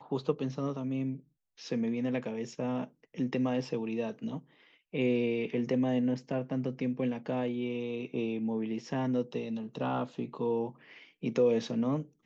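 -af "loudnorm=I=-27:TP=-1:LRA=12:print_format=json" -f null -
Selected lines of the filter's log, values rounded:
"input_i" : "-32.9",
"input_tp" : "-15.8",
"input_lra" : "2.5",
"input_thresh" : "-43.2",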